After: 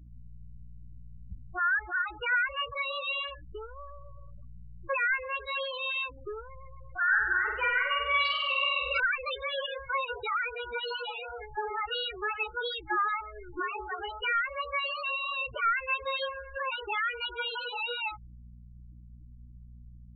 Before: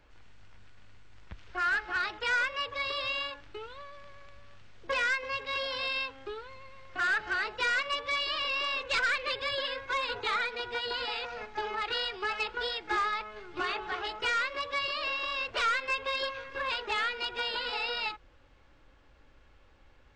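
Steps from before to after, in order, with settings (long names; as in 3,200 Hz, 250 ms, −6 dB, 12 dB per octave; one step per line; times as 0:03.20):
mains hum 60 Hz, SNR 17 dB
spectral peaks only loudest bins 8
0:07.03–0:09.00: flutter between parallel walls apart 8.3 metres, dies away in 0.92 s
level +2 dB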